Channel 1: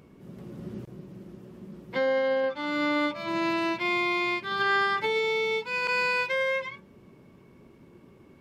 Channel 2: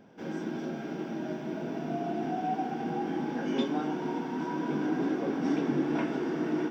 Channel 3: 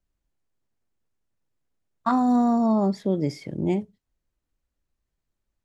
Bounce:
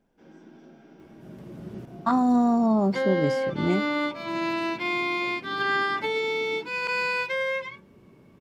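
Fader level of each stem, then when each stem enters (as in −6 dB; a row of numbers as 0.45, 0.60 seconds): −0.5, −15.0, −0.5 decibels; 1.00, 0.00, 0.00 seconds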